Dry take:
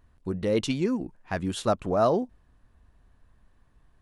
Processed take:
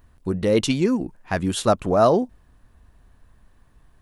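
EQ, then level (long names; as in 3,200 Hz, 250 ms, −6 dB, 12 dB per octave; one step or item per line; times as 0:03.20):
high-shelf EQ 9,600 Hz +8 dB
+6.0 dB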